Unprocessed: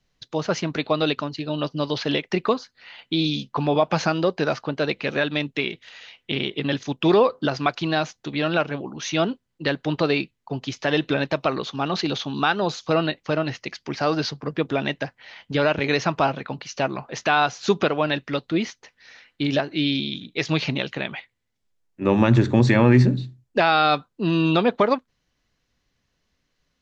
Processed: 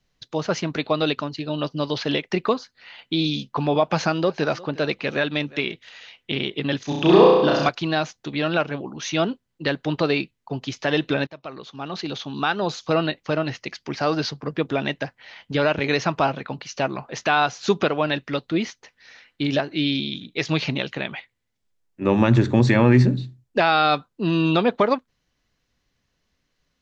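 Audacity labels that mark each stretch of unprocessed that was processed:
3.840000	5.720000	delay 355 ms -21 dB
6.840000	7.690000	flutter echo walls apart 5.7 m, dies away in 1.1 s
11.270000	12.800000	fade in, from -20 dB

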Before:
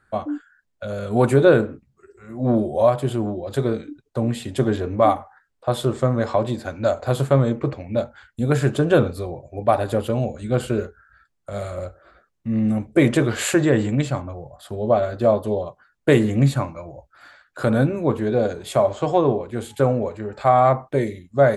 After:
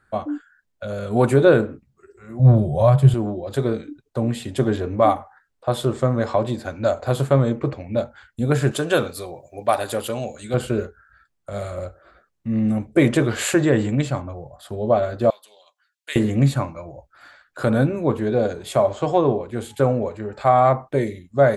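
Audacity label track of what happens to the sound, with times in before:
2.390000	3.140000	resonant low shelf 200 Hz +8.5 dB, Q 3
8.710000	10.540000	tilt EQ +3 dB/octave
15.300000	16.160000	Chebyshev high-pass 3 kHz

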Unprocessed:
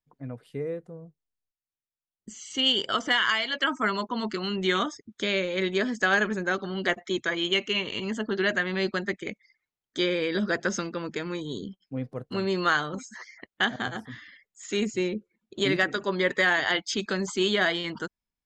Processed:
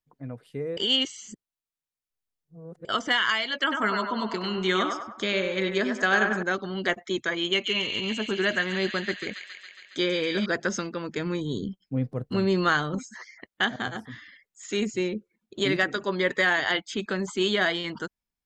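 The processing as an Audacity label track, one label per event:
0.770000	2.850000	reverse
3.580000	6.430000	band-passed feedback delay 98 ms, feedback 54%, level -3 dB
7.500000	10.460000	feedback echo behind a high-pass 138 ms, feedback 73%, high-pass 2.4 kHz, level -3.5 dB
11.170000	13.090000	bass shelf 260 Hz +9 dB
16.800000	17.390000	peaking EQ 5.3 kHz -12 dB -> -6 dB 0.83 oct

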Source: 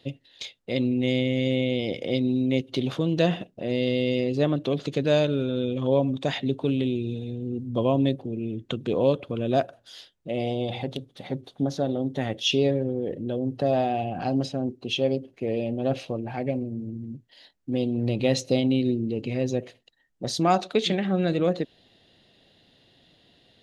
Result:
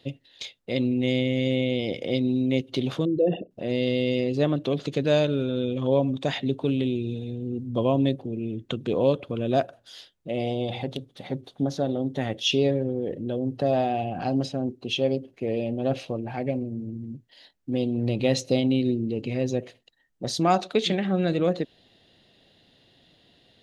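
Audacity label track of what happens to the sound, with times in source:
3.050000	3.510000	resonances exaggerated exponent 3

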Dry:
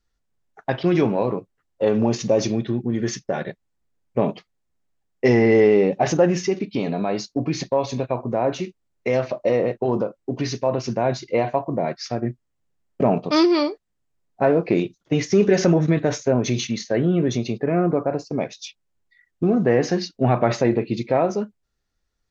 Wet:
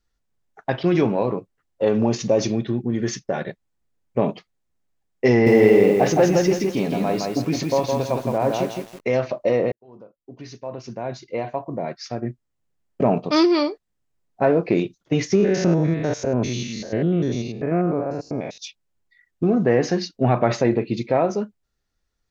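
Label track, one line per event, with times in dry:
5.300000	9.100000	bit-crushed delay 164 ms, feedback 35%, word length 7-bit, level -3 dB
9.720000	13.120000	fade in
15.350000	18.580000	spectrogram pixelated in time every 100 ms

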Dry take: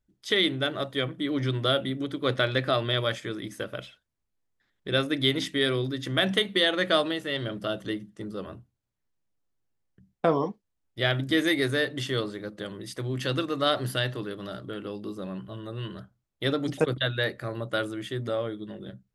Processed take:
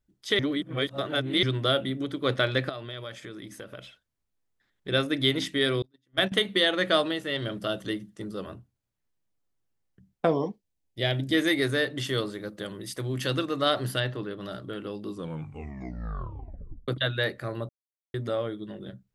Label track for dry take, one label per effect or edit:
0.390000	1.430000	reverse
2.690000	4.880000	compression 2.5:1, threshold -40 dBFS
5.820000	6.320000	gate -26 dBFS, range -39 dB
7.420000	8.540000	treble shelf 4.1 kHz +5 dB
10.270000	11.340000	peaking EQ 1.3 kHz -12 dB 0.71 oct
12.040000	13.360000	treble shelf 9.6 kHz +10 dB
14.000000	14.410000	low-pass 3.1 kHz 6 dB/octave
15.070000	15.070000	tape stop 1.81 s
17.690000	18.140000	mute

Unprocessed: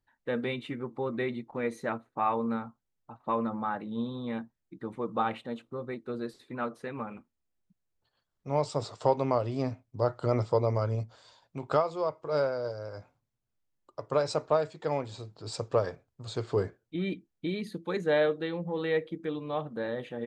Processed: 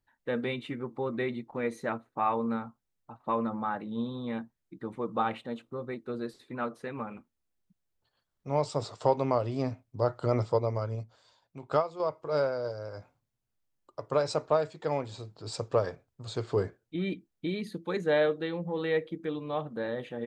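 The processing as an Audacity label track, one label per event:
10.520000	12.000000	upward expansion, over -34 dBFS

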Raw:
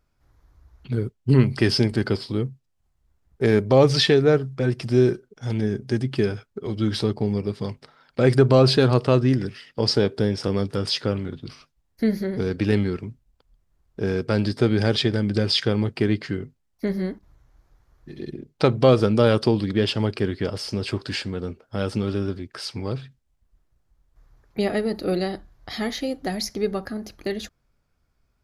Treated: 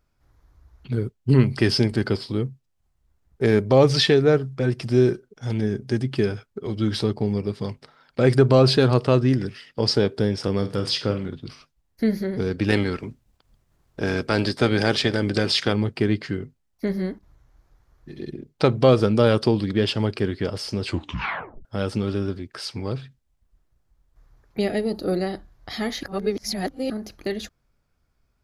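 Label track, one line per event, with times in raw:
10.580000	11.280000	flutter echo walls apart 8 m, dies away in 0.28 s
12.680000	15.720000	spectral peaks clipped ceiling under each frame's peak by 12 dB
20.860000	20.860000	tape stop 0.79 s
24.650000	25.260000	peaking EQ 950 Hz -> 3.8 kHz -12.5 dB 0.51 oct
26.030000	26.900000	reverse

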